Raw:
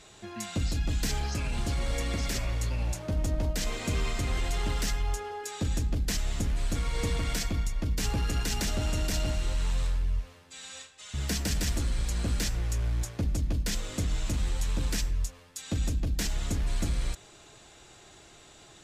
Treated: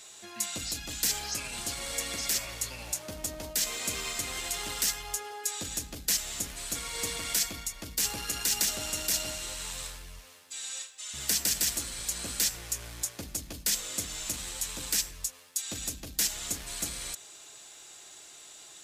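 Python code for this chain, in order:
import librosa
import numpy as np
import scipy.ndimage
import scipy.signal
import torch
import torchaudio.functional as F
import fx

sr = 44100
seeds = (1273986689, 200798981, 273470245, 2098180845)

y = fx.riaa(x, sr, side='recording')
y = y * 10.0 ** (-2.5 / 20.0)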